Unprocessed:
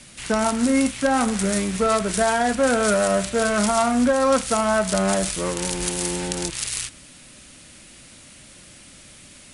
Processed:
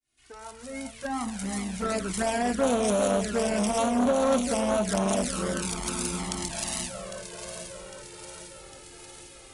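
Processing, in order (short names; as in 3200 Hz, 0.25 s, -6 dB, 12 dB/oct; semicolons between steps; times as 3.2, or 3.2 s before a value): opening faded in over 2.41 s; echo with dull and thin repeats by turns 0.402 s, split 1100 Hz, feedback 78%, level -8.5 dB; envelope flanger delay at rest 2.8 ms, full sweep at -15 dBFS; core saturation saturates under 680 Hz; gain -2 dB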